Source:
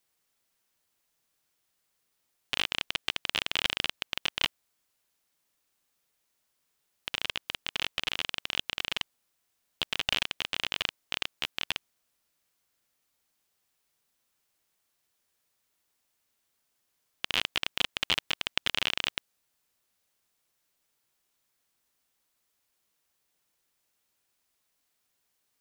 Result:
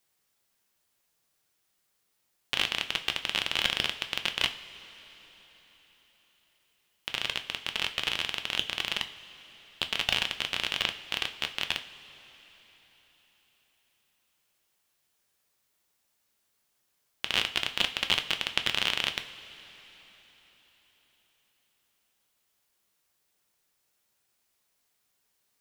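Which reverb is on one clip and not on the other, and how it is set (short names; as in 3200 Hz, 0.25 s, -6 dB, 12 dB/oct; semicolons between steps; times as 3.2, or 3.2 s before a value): two-slope reverb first 0.34 s, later 4.5 s, from -18 dB, DRR 6.5 dB; gain +1 dB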